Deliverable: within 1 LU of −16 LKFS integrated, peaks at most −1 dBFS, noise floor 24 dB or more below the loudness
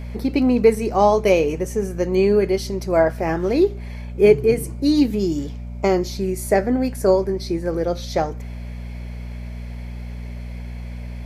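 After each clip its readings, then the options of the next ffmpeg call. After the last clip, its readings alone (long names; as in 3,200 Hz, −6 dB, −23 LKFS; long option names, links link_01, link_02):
mains hum 60 Hz; hum harmonics up to 240 Hz; level of the hum −29 dBFS; integrated loudness −19.5 LKFS; sample peak −2.5 dBFS; target loudness −16.0 LKFS
→ -af "bandreject=frequency=60:width_type=h:width=4,bandreject=frequency=120:width_type=h:width=4,bandreject=frequency=180:width_type=h:width=4,bandreject=frequency=240:width_type=h:width=4"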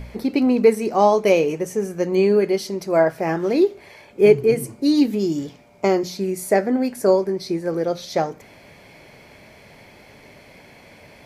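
mains hum none found; integrated loudness −19.5 LKFS; sample peak −2.5 dBFS; target loudness −16.0 LKFS
→ -af "volume=3.5dB,alimiter=limit=-1dB:level=0:latency=1"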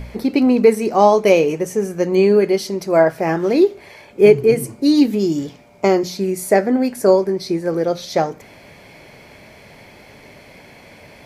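integrated loudness −16.5 LKFS; sample peak −1.0 dBFS; background noise floor −44 dBFS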